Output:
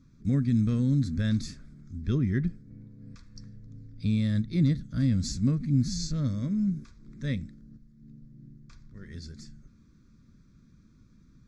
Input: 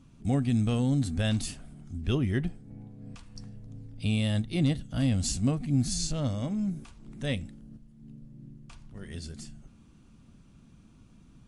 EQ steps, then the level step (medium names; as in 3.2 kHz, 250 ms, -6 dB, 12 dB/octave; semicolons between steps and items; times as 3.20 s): dynamic bell 180 Hz, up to +6 dB, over -39 dBFS, Q 1.2; static phaser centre 2.9 kHz, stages 6; -1.5 dB